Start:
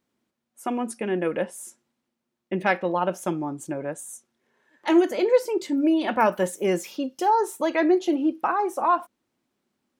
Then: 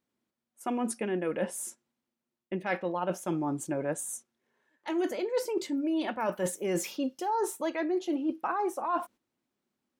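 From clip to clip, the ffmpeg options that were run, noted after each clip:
ffmpeg -i in.wav -af "agate=range=-9dB:threshold=-46dB:ratio=16:detection=peak,areverse,acompressor=threshold=-29dB:ratio=10,areverse,volume=2dB" out.wav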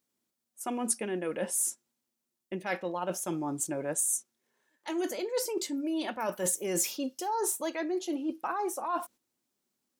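ffmpeg -i in.wav -af "bass=frequency=250:gain=-2,treble=frequency=4000:gain=11,volume=-2dB" out.wav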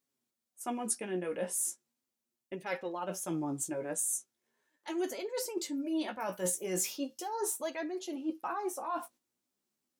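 ffmpeg -i in.wav -af "flanger=delay=7.2:depth=9.6:regen=23:speed=0.38:shape=sinusoidal" out.wav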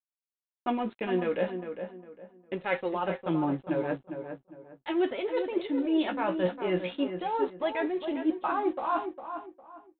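ffmpeg -i in.wav -filter_complex "[0:a]aresample=8000,aeval=exprs='sgn(val(0))*max(abs(val(0))-0.00141,0)':channel_layout=same,aresample=44100,asplit=2[link_01][link_02];[link_02]adelay=405,lowpass=frequency=1900:poles=1,volume=-8dB,asplit=2[link_03][link_04];[link_04]adelay=405,lowpass=frequency=1900:poles=1,volume=0.3,asplit=2[link_05][link_06];[link_06]adelay=405,lowpass=frequency=1900:poles=1,volume=0.3,asplit=2[link_07][link_08];[link_08]adelay=405,lowpass=frequency=1900:poles=1,volume=0.3[link_09];[link_01][link_03][link_05][link_07][link_09]amix=inputs=5:normalize=0,volume=7.5dB" out.wav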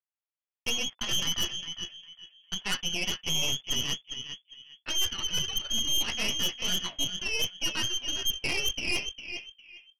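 ffmpeg -i in.wav -af "lowpass=frequency=3000:width_type=q:width=0.5098,lowpass=frequency=3000:width_type=q:width=0.6013,lowpass=frequency=3000:width_type=q:width=0.9,lowpass=frequency=3000:width_type=q:width=2.563,afreqshift=-3500,aeval=exprs='0.178*(cos(1*acos(clip(val(0)/0.178,-1,1)))-cos(1*PI/2))+0.0178*(cos(5*acos(clip(val(0)/0.178,-1,1)))-cos(5*PI/2))+0.0562*(cos(6*acos(clip(val(0)/0.178,-1,1)))-cos(6*PI/2))':channel_layout=same,volume=-5dB" out.wav

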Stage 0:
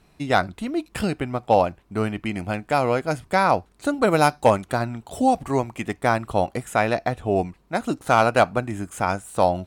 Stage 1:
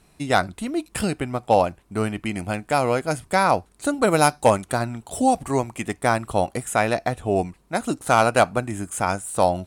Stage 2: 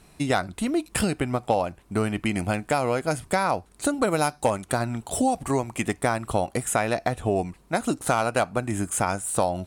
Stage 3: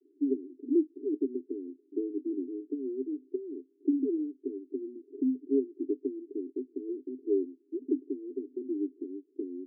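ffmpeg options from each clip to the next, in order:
ffmpeg -i in.wav -af "equalizer=frequency=9400:width_type=o:width=1:gain=9.5" out.wav
ffmpeg -i in.wav -af "acompressor=threshold=-24dB:ratio=4,volume=3.5dB" out.wav
ffmpeg -i in.wav -af "asuperpass=centerf=330:order=20:qfactor=2" out.wav

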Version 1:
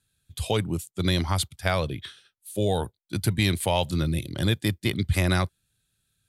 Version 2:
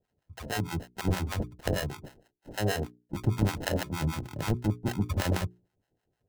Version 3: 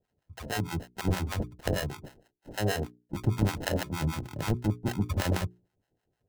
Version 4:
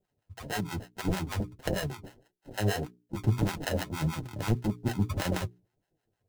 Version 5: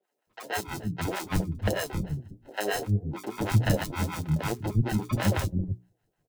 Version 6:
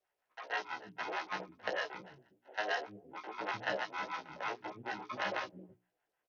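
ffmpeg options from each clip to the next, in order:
ffmpeg -i in.wav -filter_complex "[0:a]acrusher=samples=38:mix=1:aa=0.000001,acrossover=split=660[link_01][link_02];[link_01]aeval=exprs='val(0)*(1-1/2+1/2*cos(2*PI*6.4*n/s))':channel_layout=same[link_03];[link_02]aeval=exprs='val(0)*(1-1/2-1/2*cos(2*PI*6.4*n/s))':channel_layout=same[link_04];[link_03][link_04]amix=inputs=2:normalize=0,bandreject=frequency=60:width_type=h:width=6,bandreject=frequency=120:width_type=h:width=6,bandreject=frequency=180:width_type=h:width=6,bandreject=frequency=240:width_type=h:width=6,bandreject=frequency=300:width_type=h:width=6,bandreject=frequency=360:width_type=h:width=6,bandreject=frequency=420:width_type=h:width=6" out.wav
ffmpeg -i in.wav -af anull out.wav
ffmpeg -i in.wav -filter_complex "[0:a]flanger=delay=4.8:depth=5.8:regen=30:speed=1.7:shape=triangular,asplit=2[link_01][link_02];[link_02]acrusher=bits=5:mode=log:mix=0:aa=0.000001,volume=-8.5dB[link_03];[link_01][link_03]amix=inputs=2:normalize=0" out.wav
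ffmpeg -i in.wav -filter_complex "[0:a]acrossover=split=300|4000[link_01][link_02][link_03];[link_03]adelay=30[link_04];[link_01]adelay=270[link_05];[link_05][link_02][link_04]amix=inputs=3:normalize=0,volume=4dB" out.wav
ffmpeg -i in.wav -filter_complex "[0:a]highpass=710,lowpass=2900,asplit=2[link_01][link_02];[link_02]adelay=16,volume=-2.5dB[link_03];[link_01][link_03]amix=inputs=2:normalize=0,volume=-3.5dB" -ar 48000 -c:a sbc -b:a 64k out.sbc

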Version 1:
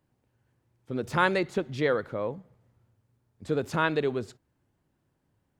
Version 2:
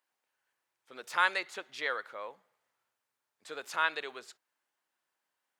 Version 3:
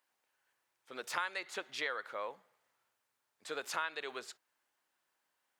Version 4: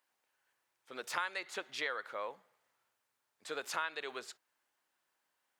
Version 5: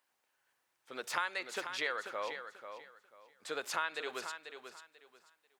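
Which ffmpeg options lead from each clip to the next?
ffmpeg -i in.wav -af "highpass=1100" out.wav
ffmpeg -i in.wav -af "acompressor=threshold=-36dB:ratio=6,volume=2.5dB" out.wav
ffmpeg -i in.wav -af anull out.wav
ffmpeg -i in.wav -af "aecho=1:1:490|980|1470:0.355|0.0852|0.0204,volume=1.5dB" out.wav

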